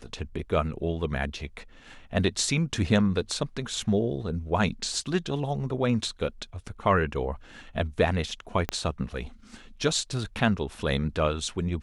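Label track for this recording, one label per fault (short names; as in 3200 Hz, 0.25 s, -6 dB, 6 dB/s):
8.690000	8.690000	pop -13 dBFS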